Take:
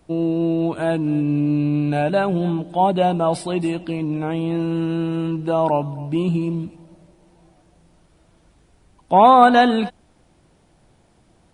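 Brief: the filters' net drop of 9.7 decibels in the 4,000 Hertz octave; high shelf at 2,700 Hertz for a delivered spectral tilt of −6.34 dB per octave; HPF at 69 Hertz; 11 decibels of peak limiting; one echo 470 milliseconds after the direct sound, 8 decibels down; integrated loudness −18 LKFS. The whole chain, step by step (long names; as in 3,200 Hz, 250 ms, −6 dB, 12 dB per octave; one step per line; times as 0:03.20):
high-pass filter 69 Hz
high-shelf EQ 2,700 Hz −6.5 dB
parametric band 4,000 Hz −8 dB
brickwall limiter −12.5 dBFS
single-tap delay 470 ms −8 dB
level +4 dB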